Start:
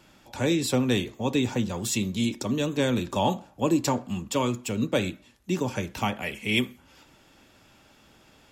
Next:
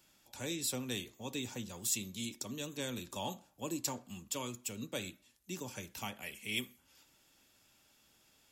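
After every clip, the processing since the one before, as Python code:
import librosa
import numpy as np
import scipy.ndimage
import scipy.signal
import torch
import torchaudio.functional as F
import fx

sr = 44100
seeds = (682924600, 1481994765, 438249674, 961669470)

y = scipy.signal.lfilter([1.0, -0.8], [1.0], x)
y = F.gain(torch.from_numpy(y), -3.0).numpy()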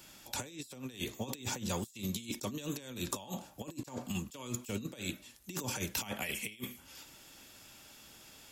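y = fx.over_compress(x, sr, threshold_db=-46.0, ratio=-0.5)
y = F.gain(torch.from_numpy(y), 7.0).numpy()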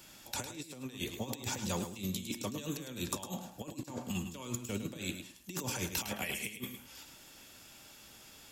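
y = fx.echo_feedback(x, sr, ms=106, feedback_pct=19, wet_db=-9.0)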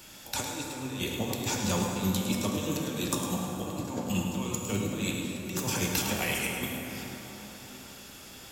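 y = fx.rev_plate(x, sr, seeds[0], rt60_s=4.5, hf_ratio=0.45, predelay_ms=0, drr_db=-0.5)
y = F.gain(torch.from_numpy(y), 5.0).numpy()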